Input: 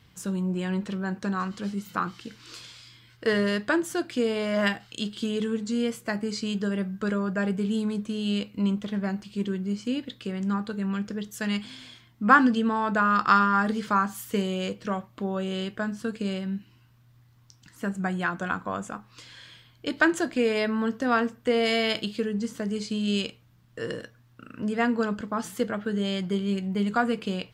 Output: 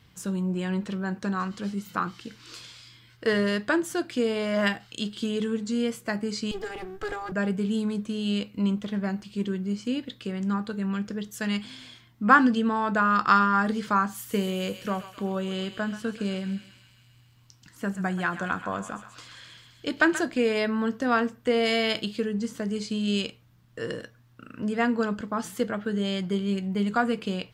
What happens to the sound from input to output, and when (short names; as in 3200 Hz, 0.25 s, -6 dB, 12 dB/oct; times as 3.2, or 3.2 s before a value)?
6.51–7.32 minimum comb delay 2.4 ms
14.16–20.23 thinning echo 0.131 s, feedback 76%, high-pass 1100 Hz, level -10 dB